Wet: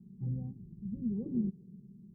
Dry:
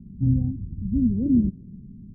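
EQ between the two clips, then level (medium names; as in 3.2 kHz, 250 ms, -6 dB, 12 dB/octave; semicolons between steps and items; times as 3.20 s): high-pass 180 Hz 6 dB/octave; bass shelf 360 Hz -7 dB; static phaser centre 410 Hz, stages 8; 0.0 dB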